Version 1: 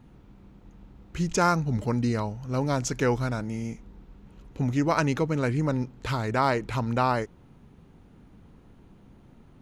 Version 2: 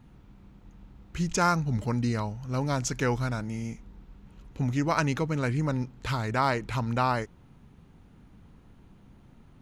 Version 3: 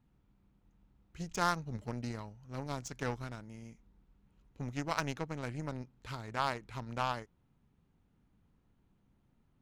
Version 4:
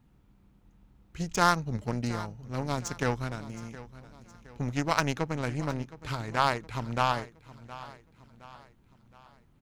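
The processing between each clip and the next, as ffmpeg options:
ffmpeg -i in.wav -af "equalizer=frequency=420:width_type=o:width=1.7:gain=-4.5" out.wav
ffmpeg -i in.wav -af "aeval=exprs='0.335*(cos(1*acos(clip(val(0)/0.335,-1,1)))-cos(1*PI/2))+0.0422*(cos(3*acos(clip(val(0)/0.335,-1,1)))-cos(3*PI/2))+0.0188*(cos(7*acos(clip(val(0)/0.335,-1,1)))-cos(7*PI/2))':channel_layout=same,volume=-4.5dB" out.wav
ffmpeg -i in.wav -af "aecho=1:1:717|1434|2151|2868:0.141|0.065|0.0299|0.0137,volume=8dB" out.wav

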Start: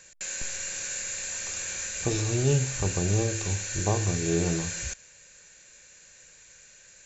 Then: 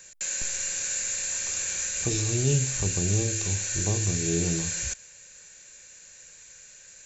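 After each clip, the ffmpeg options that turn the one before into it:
ffmpeg -i in.wav -filter_complex "[0:a]highshelf=frequency=6900:gain=9,acrossover=split=460|1600[link_01][link_02][link_03];[link_02]acompressor=threshold=-45dB:ratio=6[link_04];[link_01][link_04][link_03]amix=inputs=3:normalize=0" out.wav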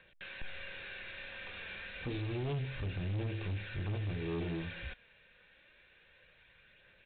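ffmpeg -i in.wav -af "aphaser=in_gain=1:out_gain=1:delay=4.7:decay=0.26:speed=0.29:type=triangular,aresample=8000,asoftclip=type=tanh:threshold=-27.5dB,aresample=44100,volume=-5dB" out.wav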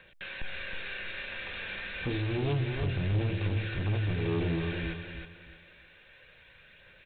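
ffmpeg -i in.wav -af "aecho=1:1:316|632|948|1264:0.501|0.145|0.0421|0.0122,volume=6dB" out.wav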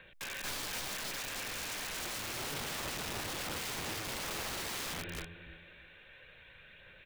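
ffmpeg -i in.wav -af "aeval=exprs='(mod(53.1*val(0)+1,2)-1)/53.1':channel_layout=same" out.wav

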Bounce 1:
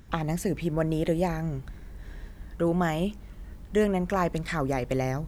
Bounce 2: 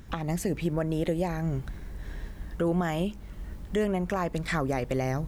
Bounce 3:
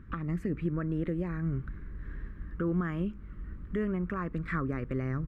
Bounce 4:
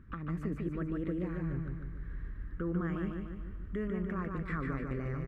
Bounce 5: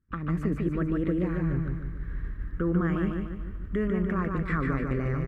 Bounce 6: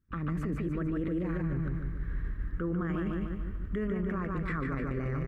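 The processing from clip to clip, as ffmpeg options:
ffmpeg -i in.wav -af "alimiter=limit=-21dB:level=0:latency=1:release=370,volume=3.5dB" out.wav
ffmpeg -i in.wav -af "firequalizer=gain_entry='entry(310,0);entry(770,-19);entry(1200,3);entry(3500,-18);entry(5900,-25)':delay=0.05:min_phase=1,volume=-2dB" out.wav
ffmpeg -i in.wav -af "aecho=1:1:148|296|444|592|740|888|1036:0.631|0.322|0.164|0.0837|0.0427|0.0218|0.0111,volume=-5dB" out.wav
ffmpeg -i in.wav -af "agate=range=-33dB:threshold=-38dB:ratio=3:detection=peak,volume=8dB" out.wav
ffmpeg -i in.wav -af "alimiter=level_in=1dB:limit=-24dB:level=0:latency=1:release=32,volume=-1dB" out.wav

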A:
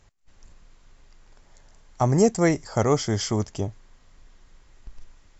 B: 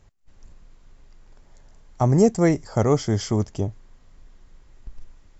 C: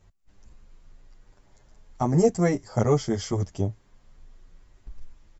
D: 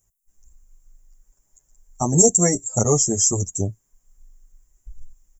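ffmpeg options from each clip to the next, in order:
ffmpeg -i in.wav -af "tiltshelf=frequency=700:gain=3.5" out.wav
ffmpeg -i in.wav -filter_complex "[0:a]asplit=2[link_01][link_02];[link_02]adelay=8.4,afreqshift=0.87[link_03];[link_01][link_03]amix=inputs=2:normalize=1" out.wav
ffmpeg -i in.wav -af "aexciter=amount=12.8:drive=9.9:freq=6700,afftdn=noise_reduction=17:noise_floor=-32,volume=2dB" out.wav

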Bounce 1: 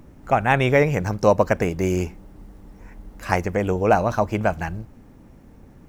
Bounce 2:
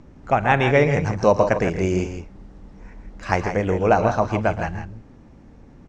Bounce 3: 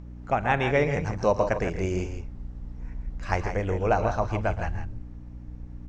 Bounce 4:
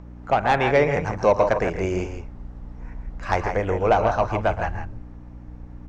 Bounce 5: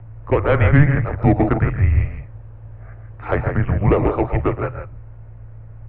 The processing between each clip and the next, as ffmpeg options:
ffmpeg -i in.wav -filter_complex "[0:a]lowpass=frequency=6800:width=0.5412,lowpass=frequency=6800:width=1.3066,asplit=2[link_01][link_02];[link_02]aecho=0:1:41|115|116|136|162:0.112|0.133|0.106|0.237|0.335[link_03];[link_01][link_03]amix=inputs=2:normalize=0" out.wav
ffmpeg -i in.wav -af "asubboost=boost=6:cutoff=69,aeval=exprs='val(0)+0.02*(sin(2*PI*60*n/s)+sin(2*PI*2*60*n/s)/2+sin(2*PI*3*60*n/s)/3+sin(2*PI*4*60*n/s)/4+sin(2*PI*5*60*n/s)/5)':channel_layout=same,volume=-6dB" out.wav
ffmpeg -i in.wav -filter_complex "[0:a]equalizer=frequency=950:width_type=o:width=2.7:gain=8.5,acrossover=split=570|2500[link_01][link_02][link_03];[link_02]asoftclip=type=tanh:threshold=-16dB[link_04];[link_01][link_04][link_03]amix=inputs=3:normalize=0" out.wav
ffmpeg -i in.wav -af "highpass=frequency=170:width_type=q:width=0.5412,highpass=frequency=170:width_type=q:width=1.307,lowpass=frequency=3100:width_type=q:width=0.5176,lowpass=frequency=3100:width_type=q:width=0.7071,lowpass=frequency=3100:width_type=q:width=1.932,afreqshift=-290,lowshelf=frequency=150:width_type=q:width=3:gain=6,volume=3dB" out.wav

